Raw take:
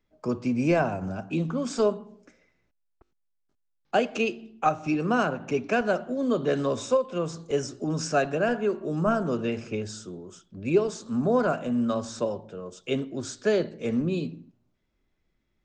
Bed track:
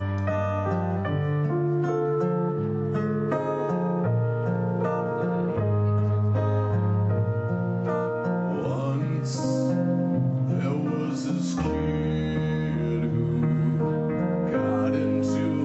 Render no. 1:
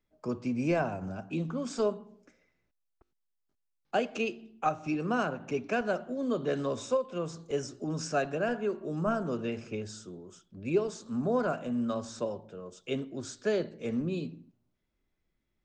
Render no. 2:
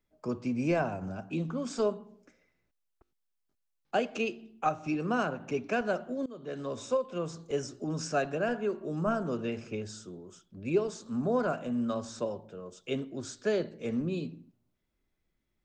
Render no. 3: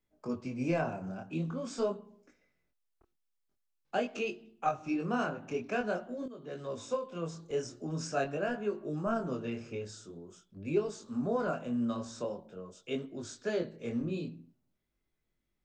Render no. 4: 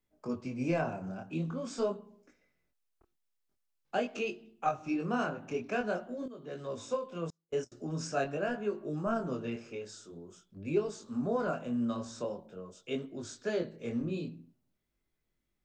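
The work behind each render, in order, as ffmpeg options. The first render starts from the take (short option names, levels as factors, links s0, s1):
-af "volume=0.531"
-filter_complex "[0:a]asplit=2[s0][s1];[s0]atrim=end=6.26,asetpts=PTS-STARTPTS,afade=t=out:st=6.256:d=0.004:c=hsin:silence=0.0891251[s2];[s1]atrim=start=6.26,asetpts=PTS-STARTPTS,afade=t=in:d=0.74:silence=0.0891251[s3];[s2][s3]concat=n=2:v=0:a=1"
-af "flanger=delay=19.5:depth=6.4:speed=0.46"
-filter_complex "[0:a]asettb=1/sr,asplit=3[s0][s1][s2];[s0]atrim=end=7.304[s3];[s1]atrim=start=7.3:end=7.72,asetpts=PTS-STARTPTS,afade=t=in:d=0.004:c=qsin,afade=t=out:st=0.416:d=0.004:c=qsin,agate=range=0.0126:threshold=0.01:ratio=16:release=100:detection=peak[s4];[s2]atrim=start=7.716[s5];[s3][s4]acrossfade=d=0.004:c1=hsin:c2=qsin[s6];[s6][s5]acrossfade=d=0.004:c1=qsin:c2=hsin,asettb=1/sr,asplit=3[s7][s8][s9];[s7]atrim=end=9.564[s10];[s8]atrim=start=9.56:end=10.12,asetpts=PTS-STARTPTS,afade=t=in:d=0.004:c=qsin,afade=t=out:st=0.556:d=0.004:c=qsin,equalizer=f=63:w=0.54:g=-15[s11];[s9]atrim=start=10.116[s12];[s10][s11]acrossfade=d=0.004:c1=hsin:c2=qsin[s13];[s13][s12]acrossfade=d=0.004:c1=qsin:c2=hsin"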